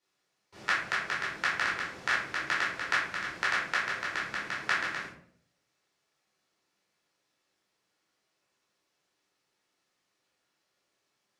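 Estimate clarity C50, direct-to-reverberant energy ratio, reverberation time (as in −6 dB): 3.0 dB, −7.0 dB, 0.60 s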